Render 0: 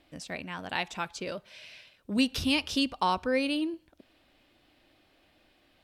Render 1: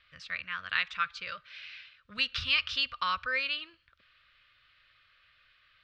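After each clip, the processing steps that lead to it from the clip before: EQ curve 120 Hz 0 dB, 310 Hz -24 dB, 520 Hz -8 dB, 840 Hz -17 dB, 1200 Hz +13 dB, 4400 Hz +6 dB, 12000 Hz -29 dB; gain -5.5 dB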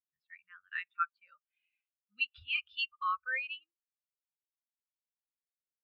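spectral expander 2.5:1; gain -8.5 dB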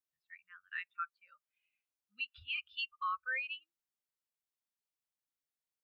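limiter -28 dBFS, peak gain reduction 8 dB; gain -1 dB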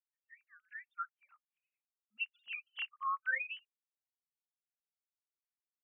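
sine-wave speech

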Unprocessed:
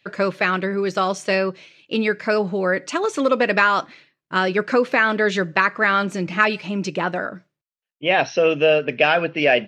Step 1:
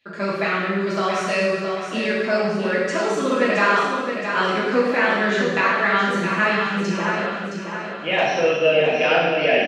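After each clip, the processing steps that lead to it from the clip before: on a send: feedback echo 0.669 s, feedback 45%, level -7 dB; on the sum: non-linear reverb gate 0.42 s falling, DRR -6.5 dB; gain -8 dB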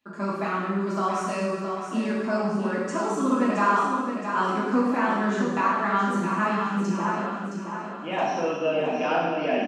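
graphic EQ 125/250/500/1000/2000/4000/8000 Hz -8/+9/-8/+8/-10/-9/+4 dB; gain -4 dB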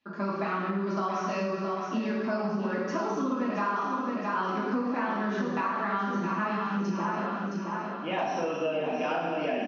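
compressor, threshold -26 dBFS, peak gain reduction 9.5 dB; steep low-pass 6200 Hz 96 dB/oct

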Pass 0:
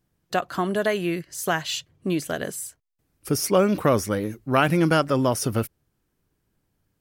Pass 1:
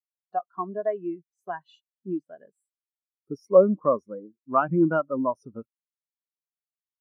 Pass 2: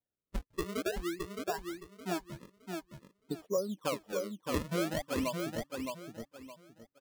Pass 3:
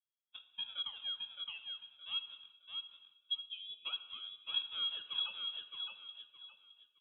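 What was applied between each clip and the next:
fifteen-band EQ 100 Hz -9 dB, 1000 Hz +7 dB, 10000 Hz -3 dB; spectral expander 2.5:1; gain -2.5 dB
compressor 4:1, threshold -31 dBFS, peak gain reduction 17.5 dB; decimation with a swept rate 33×, swing 160% 0.5 Hz; feedback echo 0.616 s, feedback 27%, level -4.5 dB; gain -1.5 dB
vowel filter u; inverted band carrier 3600 Hz; non-linear reverb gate 0.42 s falling, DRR 9.5 dB; gain +4 dB

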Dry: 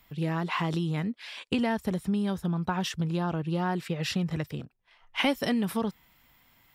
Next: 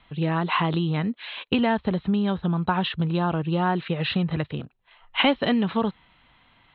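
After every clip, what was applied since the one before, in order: rippled Chebyshev low-pass 4100 Hz, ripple 3 dB; gain +7.5 dB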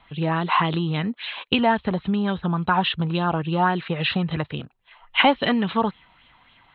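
LFO bell 3.6 Hz 780–3500 Hz +9 dB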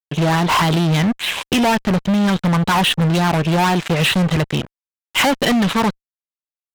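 fuzz box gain 28 dB, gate -37 dBFS

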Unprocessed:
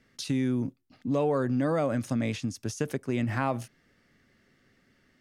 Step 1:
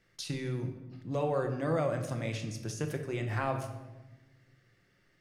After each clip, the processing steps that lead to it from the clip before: bell 240 Hz -12 dB 0.36 oct; reverb RT60 1.1 s, pre-delay 6 ms, DRR 4.5 dB; gain -4 dB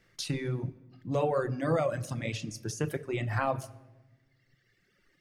reverb removal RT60 1.8 s; gain +4 dB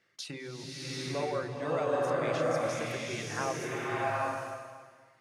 HPF 470 Hz 6 dB/oct; high shelf 11000 Hz -11.5 dB; bloom reverb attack 0.81 s, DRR -5.5 dB; gain -3 dB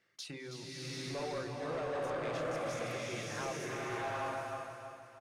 soft clip -29.5 dBFS, distortion -12 dB; feedback echo 0.323 s, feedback 41%, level -7.5 dB; gain -3.5 dB

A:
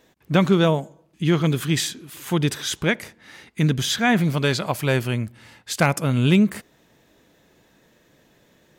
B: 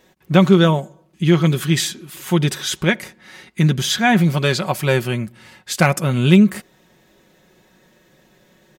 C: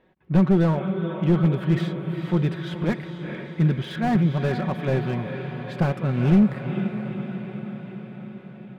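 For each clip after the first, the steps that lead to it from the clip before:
comb 5.4 ms, depth 50%; gain +2.5 dB
air absorption 480 m; diffused feedback echo 0.463 s, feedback 65%, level -9.5 dB; slew limiter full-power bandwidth 97 Hz; gain -4.5 dB

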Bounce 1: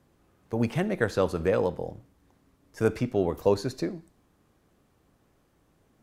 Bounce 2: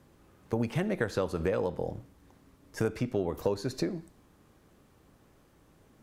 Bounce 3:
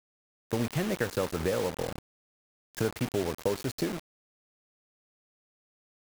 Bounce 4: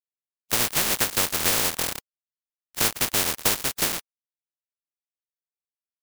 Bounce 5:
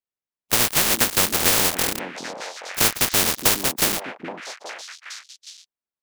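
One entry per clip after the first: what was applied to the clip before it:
notch 710 Hz, Q 22; compressor 5:1, threshold -31 dBFS, peak gain reduction 13 dB; gain +4.5 dB
requantised 6-bit, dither none
spectral contrast lowered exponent 0.22; gain +6.5 dB
delay with a stepping band-pass 0.412 s, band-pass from 260 Hz, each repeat 1.4 oct, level -2.5 dB; mismatched tape noise reduction decoder only; gain +4 dB

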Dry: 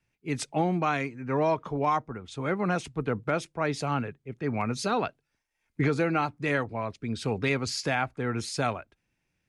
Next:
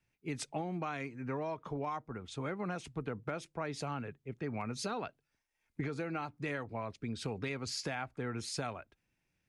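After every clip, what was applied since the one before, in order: compressor, threshold -31 dBFS, peak gain reduction 10 dB; gain -3.5 dB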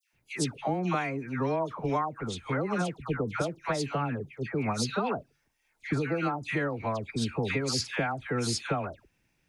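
dispersion lows, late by 0.131 s, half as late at 1500 Hz; gain +8.5 dB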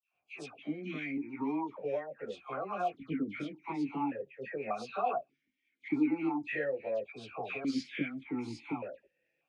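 chorus voices 4, 0.39 Hz, delay 17 ms, depth 3.1 ms; vowel sequencer 1.7 Hz; gain +9 dB

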